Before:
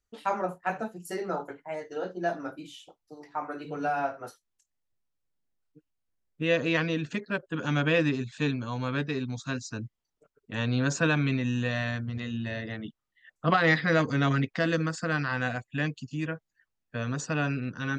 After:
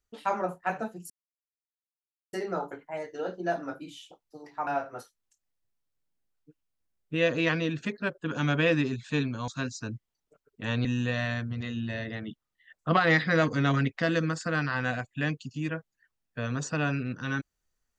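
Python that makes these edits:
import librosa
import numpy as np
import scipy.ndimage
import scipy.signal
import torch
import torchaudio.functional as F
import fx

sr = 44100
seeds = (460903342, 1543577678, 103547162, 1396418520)

y = fx.edit(x, sr, fx.insert_silence(at_s=1.1, length_s=1.23),
    fx.cut(start_s=3.44, length_s=0.51),
    fx.cut(start_s=8.76, length_s=0.62),
    fx.cut(start_s=10.75, length_s=0.67), tone=tone)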